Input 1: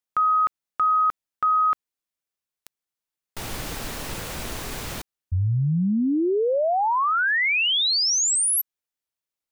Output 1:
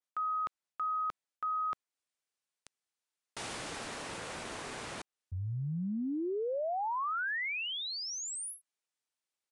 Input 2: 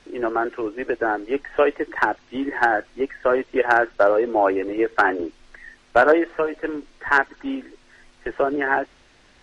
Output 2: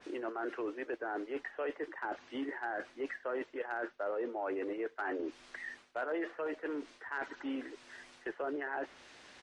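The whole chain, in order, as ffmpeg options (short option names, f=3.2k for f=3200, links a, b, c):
-af "highpass=f=350:p=1,areverse,acompressor=threshold=-33dB:ratio=6:attack=0.75:release=113:knee=6:detection=rms,areverse,aresample=22050,aresample=44100,adynamicequalizer=threshold=0.00251:dfrequency=2600:dqfactor=0.7:tfrequency=2600:tqfactor=0.7:attack=5:release=100:ratio=0.375:range=3:mode=cutabove:tftype=highshelf"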